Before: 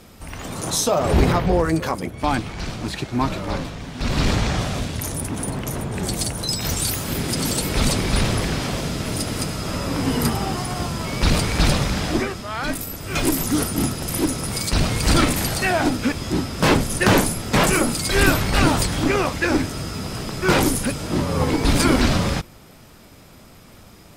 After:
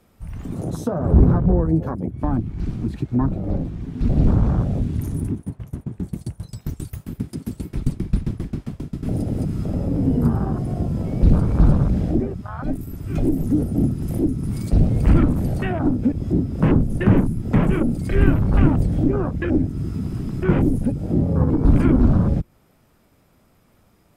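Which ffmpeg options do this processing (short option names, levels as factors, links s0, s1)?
-filter_complex "[0:a]asettb=1/sr,asplit=3[s0][s1][s2];[s0]atrim=end=5.334[s3];[s1]atrim=start=5.33:end=9.03,asetpts=PTS-STARTPTS,afade=t=in:d=0.004:c=qsin,afade=t=out:st=3.696:d=0.004:c=qsin,aeval=exprs='val(0)*pow(10,-22*if(lt(mod(7.5*n/s,1),2*abs(7.5)/1000),1-mod(7.5*n/s,1)/(2*abs(7.5)/1000),(mod(7.5*n/s,1)-2*abs(7.5)/1000)/(1-2*abs(7.5)/1000))/20)':c=same[s4];[s2]atrim=start=9.026[s5];[s3][s4]acrossfade=d=0.004:c1=hsin:c2=qsin[s6];[s6][s5]acrossfade=d=0.004:c1=qsin:c2=hsin,afwtdn=0.0794,equalizer=f=4900:t=o:w=2:g=-7,acrossover=split=310[s7][s8];[s8]acompressor=threshold=0.01:ratio=2.5[s9];[s7][s9]amix=inputs=2:normalize=0,volume=1.78"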